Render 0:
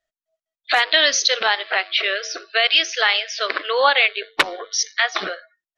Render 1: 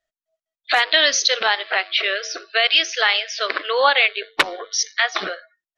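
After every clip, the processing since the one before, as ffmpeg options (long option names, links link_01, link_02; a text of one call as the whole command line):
ffmpeg -i in.wav -af anull out.wav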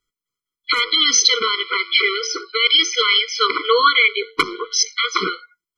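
ffmpeg -i in.wav -af "alimiter=limit=-9.5dB:level=0:latency=1:release=12,afftfilt=real='re*eq(mod(floor(b*sr/1024/490),2),0)':imag='im*eq(mod(floor(b*sr/1024/490),2),0)':win_size=1024:overlap=0.75,volume=8.5dB" out.wav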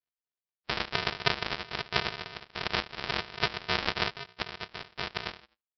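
ffmpeg -i in.wav -af "aresample=11025,acrusher=samples=40:mix=1:aa=0.000001,aresample=44100,bandpass=frequency=3200:width_type=q:width=0.6:csg=0,volume=1dB" out.wav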